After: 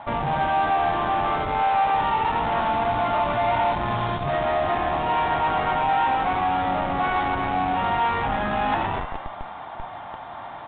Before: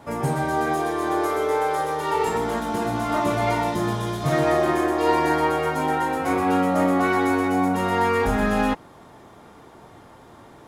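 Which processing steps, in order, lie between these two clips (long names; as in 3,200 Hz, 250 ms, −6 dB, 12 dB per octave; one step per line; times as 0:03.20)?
echo with shifted repeats 125 ms, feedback 57%, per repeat +70 Hz, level −16 dB
reversed playback
downward compressor 16 to 1, threshold −31 dBFS, peak gain reduction 17 dB
reversed playback
harmonic generator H 5 −17 dB, 6 −43 dB, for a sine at −21 dBFS
low shelf with overshoot 560 Hz −8.5 dB, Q 3
in parallel at −3.5 dB: comparator with hysteresis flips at −31 dBFS
on the sum: level +5 dB
A-law companding 64 kbit/s 8,000 Hz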